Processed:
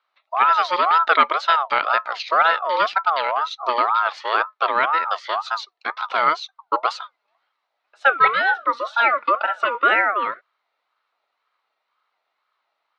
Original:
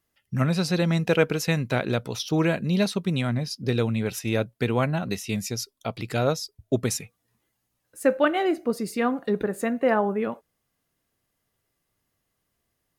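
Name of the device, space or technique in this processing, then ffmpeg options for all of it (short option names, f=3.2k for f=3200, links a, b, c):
voice changer toy: -filter_complex "[0:a]aeval=exprs='val(0)*sin(2*PI*940*n/s+940*0.25/2*sin(2*PI*2*n/s))':c=same,highpass=540,equalizer=f=660:t=q:w=4:g=3,equalizer=f=1.3k:t=q:w=4:g=8,equalizer=f=2.1k:t=q:w=4:g=6,equalizer=f=4k:t=q:w=4:g=6,lowpass=f=4.2k:w=0.5412,lowpass=f=4.2k:w=1.3066,asettb=1/sr,asplit=3[a][b][c];[a]atrim=end=8.794[d];[b]atrim=start=8.79:end=9.75,asetpts=PTS-STARTPTS,afade=t=in:d=0.004:c=qsin,afade=t=out:st=0.956:d=0.004:c=qsin,aecho=1:1:3.5:0.68,atrim=end_sample=42336[e];[c]atrim=start=9.746[f];[d][e]acrossfade=d=0.004:c1=hsin:c2=qsin[g];[g][f]acrossfade=d=0.004:c1=qsin:c2=hsin,volume=4.5dB"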